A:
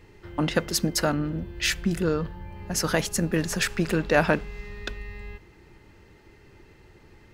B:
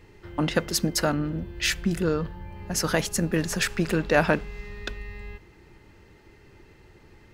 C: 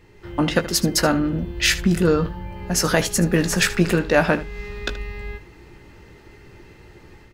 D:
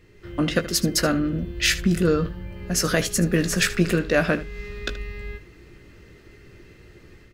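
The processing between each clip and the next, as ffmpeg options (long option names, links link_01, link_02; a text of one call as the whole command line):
ffmpeg -i in.wav -af anull out.wav
ffmpeg -i in.wav -filter_complex "[0:a]dynaudnorm=framelen=150:gausssize=3:maxgain=6.5dB,asplit=2[link_01][link_02];[link_02]aecho=0:1:17|77:0.355|0.168[link_03];[link_01][link_03]amix=inputs=2:normalize=0" out.wav
ffmpeg -i in.wav -af "equalizer=frequency=870:width=4.2:gain=-13.5,volume=-2dB" out.wav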